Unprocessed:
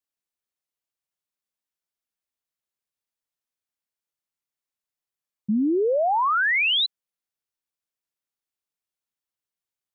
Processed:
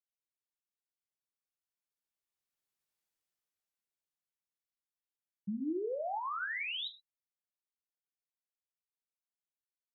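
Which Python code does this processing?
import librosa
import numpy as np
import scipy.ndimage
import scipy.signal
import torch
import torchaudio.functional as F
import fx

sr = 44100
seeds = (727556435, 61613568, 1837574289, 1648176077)

y = fx.doppler_pass(x, sr, speed_mps=8, closest_m=3.8, pass_at_s=2.95)
y = fx.rev_gated(y, sr, seeds[0], gate_ms=140, shape='falling', drr_db=7.0)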